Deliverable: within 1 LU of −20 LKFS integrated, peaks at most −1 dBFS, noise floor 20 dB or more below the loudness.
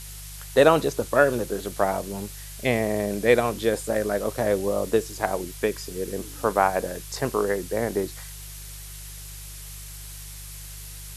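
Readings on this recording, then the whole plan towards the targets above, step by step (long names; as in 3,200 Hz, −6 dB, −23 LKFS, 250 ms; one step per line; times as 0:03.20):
mains hum 50 Hz; hum harmonics up to 150 Hz; level of the hum −39 dBFS; background noise floor −39 dBFS; target noise floor −45 dBFS; integrated loudness −24.5 LKFS; sample peak −3.5 dBFS; target loudness −20.0 LKFS
→ hum removal 50 Hz, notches 3
broadband denoise 6 dB, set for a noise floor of −39 dBFS
level +4.5 dB
brickwall limiter −1 dBFS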